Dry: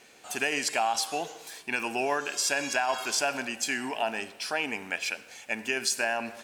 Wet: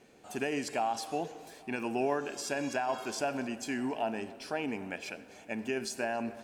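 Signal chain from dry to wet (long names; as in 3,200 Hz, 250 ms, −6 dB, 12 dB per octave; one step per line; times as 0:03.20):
tilt shelving filter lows +8.5 dB, about 720 Hz
tape delay 275 ms, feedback 82%, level −21 dB, low-pass 4,500 Hz
level −3.5 dB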